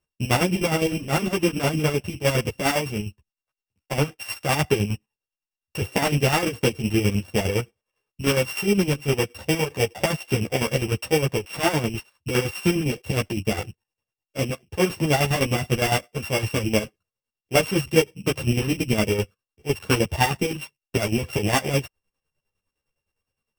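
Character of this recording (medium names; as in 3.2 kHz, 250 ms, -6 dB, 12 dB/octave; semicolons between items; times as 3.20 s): a buzz of ramps at a fixed pitch in blocks of 16 samples; chopped level 9.8 Hz, depth 60%, duty 45%; a shimmering, thickened sound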